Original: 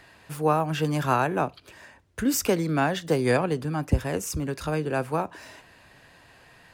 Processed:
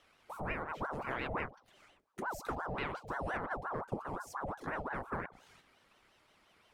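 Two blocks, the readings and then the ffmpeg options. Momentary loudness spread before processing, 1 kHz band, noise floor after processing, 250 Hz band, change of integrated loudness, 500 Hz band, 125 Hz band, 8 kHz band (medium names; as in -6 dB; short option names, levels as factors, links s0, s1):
7 LU, -10.5 dB, -69 dBFS, -18.0 dB, -14.0 dB, -15.5 dB, -18.5 dB, -23.5 dB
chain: -filter_complex "[0:a]afwtdn=0.0398,bandreject=f=60:t=h:w=6,bandreject=f=120:t=h:w=6,bandreject=f=180:t=h:w=6,bandreject=f=240:t=h:w=6,bandreject=f=300:t=h:w=6,bandreject=f=360:t=h:w=6,bandreject=f=420:t=h:w=6,acrossover=split=190|1000[s0][s1][s2];[s1]alimiter=limit=0.0631:level=0:latency=1[s3];[s0][s3][s2]amix=inputs=3:normalize=0,acompressor=threshold=0.00631:ratio=2.5,flanger=delay=1.9:depth=3.6:regen=28:speed=0.38:shape=triangular,aeval=exprs='val(0)*sin(2*PI*770*n/s+770*0.65/5.7*sin(2*PI*5.7*n/s))':c=same,volume=2.82"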